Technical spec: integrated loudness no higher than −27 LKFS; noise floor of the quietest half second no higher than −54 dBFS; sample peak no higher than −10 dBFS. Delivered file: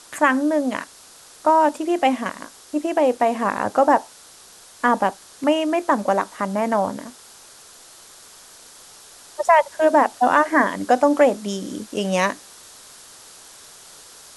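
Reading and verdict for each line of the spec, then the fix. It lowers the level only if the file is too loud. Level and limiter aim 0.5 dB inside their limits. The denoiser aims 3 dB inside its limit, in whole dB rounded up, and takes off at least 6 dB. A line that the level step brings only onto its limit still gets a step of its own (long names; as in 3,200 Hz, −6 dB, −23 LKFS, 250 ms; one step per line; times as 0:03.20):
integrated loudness −20.0 LKFS: out of spec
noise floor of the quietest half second −46 dBFS: out of spec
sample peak −3.5 dBFS: out of spec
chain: broadband denoise 6 dB, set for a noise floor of −46 dBFS
level −7.5 dB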